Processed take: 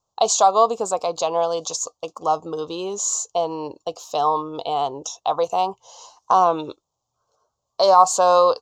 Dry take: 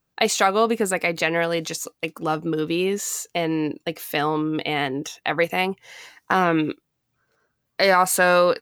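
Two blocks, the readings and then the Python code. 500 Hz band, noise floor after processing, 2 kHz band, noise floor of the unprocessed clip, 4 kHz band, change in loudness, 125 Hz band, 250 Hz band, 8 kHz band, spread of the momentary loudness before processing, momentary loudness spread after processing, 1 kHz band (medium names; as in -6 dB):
+1.5 dB, -79 dBFS, -18.0 dB, -76 dBFS, -2.0 dB, +1.5 dB, -10.5 dB, -9.0 dB, +4.0 dB, 12 LU, 13 LU, +5.5 dB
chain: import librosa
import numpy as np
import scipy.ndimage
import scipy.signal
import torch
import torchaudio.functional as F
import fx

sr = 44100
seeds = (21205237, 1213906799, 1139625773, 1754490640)

y = fx.curve_eq(x, sr, hz=(100.0, 160.0, 290.0, 620.0, 1100.0, 1900.0, 3100.0, 4600.0, 7000.0, 9900.0), db=(0, -8, -8, 8, 11, -30, -1, 4, 11, -18))
y = y * 10.0 ** (-3.0 / 20.0)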